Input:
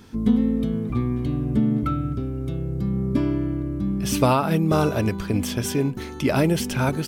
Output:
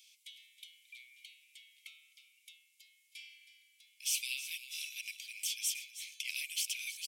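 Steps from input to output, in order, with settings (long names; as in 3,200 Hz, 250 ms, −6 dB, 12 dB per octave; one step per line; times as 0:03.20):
Chebyshev high-pass with heavy ripple 2,200 Hz, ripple 3 dB
repeating echo 318 ms, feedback 28%, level −13.5 dB
level −2.5 dB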